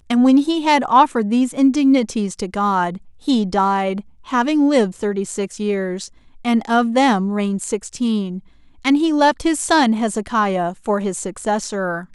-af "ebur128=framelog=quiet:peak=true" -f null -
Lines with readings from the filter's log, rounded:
Integrated loudness:
  I:         -18.1 LUFS
  Threshold: -28.3 LUFS
Loudness range:
  LRA:         2.9 LU
  Threshold: -38.7 LUFS
  LRA low:   -20.0 LUFS
  LRA high:  -17.1 LUFS
True peak:
  Peak:       -1.2 dBFS